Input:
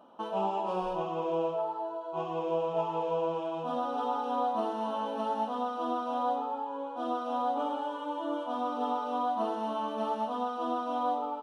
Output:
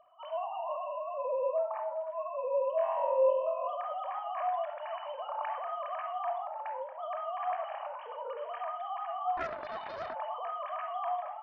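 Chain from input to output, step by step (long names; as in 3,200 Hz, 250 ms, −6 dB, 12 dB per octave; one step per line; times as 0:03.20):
three sine waves on the formant tracks
low-shelf EQ 290 Hz −10.5 dB
0:02.76–0:03.68: flutter between parallel walls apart 3.9 metres, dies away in 0.73 s
convolution reverb RT60 0.55 s, pre-delay 25 ms, DRR 4 dB
0:09.37–0:10.15: highs frequency-modulated by the lows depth 0.56 ms
level −5.5 dB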